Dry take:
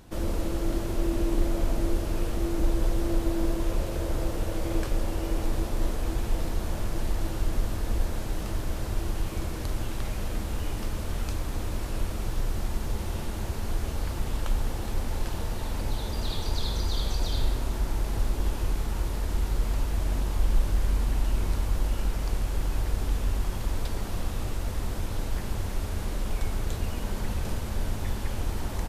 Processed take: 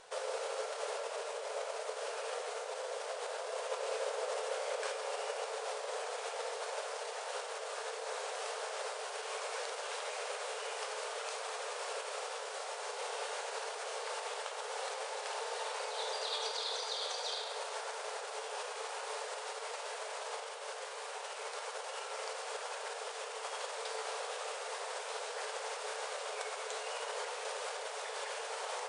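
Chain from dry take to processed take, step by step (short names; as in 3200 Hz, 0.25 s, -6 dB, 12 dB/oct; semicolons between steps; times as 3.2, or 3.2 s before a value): limiter -23.5 dBFS, peak gain reduction 11 dB; brick-wall FIR band-pass 410–10000 Hz; on a send: reverb, pre-delay 5 ms, DRR 3 dB; on the sum: gain +1.5 dB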